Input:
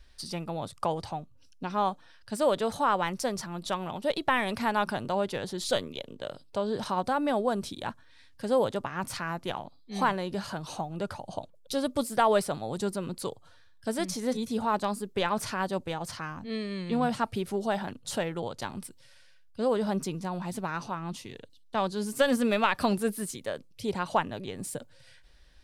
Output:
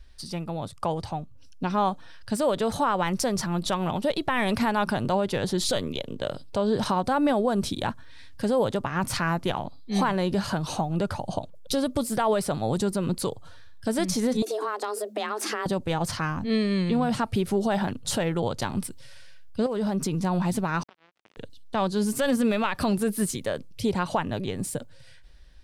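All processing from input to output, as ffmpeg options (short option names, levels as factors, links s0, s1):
-filter_complex "[0:a]asettb=1/sr,asplit=3[s0][s1][s2];[s0]atrim=end=14.424[s3];[s1]atrim=start=14.42:end=15.66,asetpts=PTS-STARTPTS,afade=t=in:d=0.004:c=qsin,afade=t=out:st=1.236:d=0.004:c=qsin,acompressor=threshold=0.0224:ratio=12:attack=3.2:release=140:knee=1:detection=peak,afreqshift=210[s4];[s2]atrim=start=15.656[s5];[s3][s4]acrossfade=d=0.004:c1=hsin:c2=qsin[s6];[s6][s5]acrossfade=d=0.004:c1=qsin:c2=hsin,asettb=1/sr,asplit=3[s7][s8][s9];[s7]atrim=end=19.664[s10];[s8]atrim=start=19.66:end=20.23,asetpts=PTS-STARTPTS,afade=t=in:d=0.004:c=qsin,afade=t=out:st=0.566:d=0.004:c=qsin,acompressor=threshold=0.0224:ratio=4:attack=3.2:release=140:knee=1:detection=peak,volume=26.6,asoftclip=hard,volume=0.0376[s11];[s9]atrim=start=20.226[s12];[s10][s11]acrossfade=d=0.004:c1=hsin:c2=qsin[s13];[s13][s12]acrossfade=d=0.004:c1=qsin:c2=hsin,asettb=1/sr,asplit=3[s14][s15][s16];[s14]atrim=end=20.834[s17];[s15]atrim=start=20.83:end=21.37,asetpts=PTS-STARTPTS,afade=t=in:d=0.004:c=qsin,afade=t=out:st=0.536:d=0.004:c=qsin,acompressor=threshold=0.0141:ratio=10:attack=3.2:release=140:knee=1:detection=peak,acrusher=bits=4:mix=0:aa=0.5,highpass=220,lowpass=3300[s18];[s16]atrim=start=21.366[s19];[s17][s18]acrossfade=d=0.004:c1=hsin:c2=qsin[s20];[s20][s19]acrossfade=d=0.004:c1=qsin:c2=hsin,lowshelf=f=200:g=7,dynaudnorm=f=350:g=9:m=2.37,alimiter=limit=0.178:level=0:latency=1:release=141"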